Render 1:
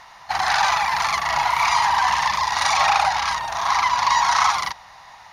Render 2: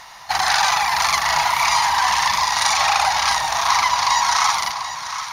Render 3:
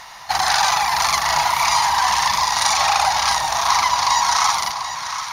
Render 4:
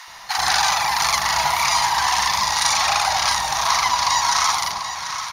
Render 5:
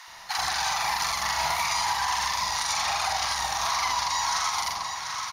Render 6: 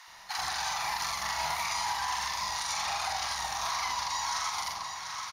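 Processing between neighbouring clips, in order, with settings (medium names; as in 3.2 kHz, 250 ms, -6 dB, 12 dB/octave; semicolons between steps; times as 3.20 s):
treble shelf 4.5 kHz +11 dB; gain riding within 3 dB 0.5 s; echo whose repeats swap between lows and highs 370 ms, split 960 Hz, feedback 72%, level -8 dB
dynamic bell 2.1 kHz, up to -4 dB, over -29 dBFS, Q 0.78; trim +2 dB
bands offset in time highs, lows 80 ms, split 830 Hz
doubling 46 ms -4 dB; peak limiter -10 dBFS, peak gain reduction 8 dB; trim -6.5 dB
doubling 26 ms -11 dB; trim -6 dB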